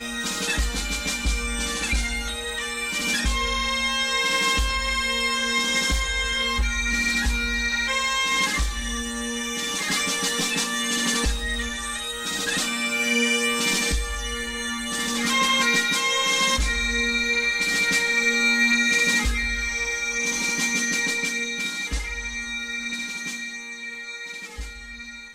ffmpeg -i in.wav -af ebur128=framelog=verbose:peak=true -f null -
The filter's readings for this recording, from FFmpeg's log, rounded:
Integrated loudness:
  I:         -22.5 LUFS
  Threshold: -32.7 LUFS
Loudness range:
  LRA:         5.1 LU
  Threshold: -42.3 LUFS
  LRA low:   -25.0 LUFS
  LRA high:  -19.8 LUFS
True peak:
  Peak:       -8.9 dBFS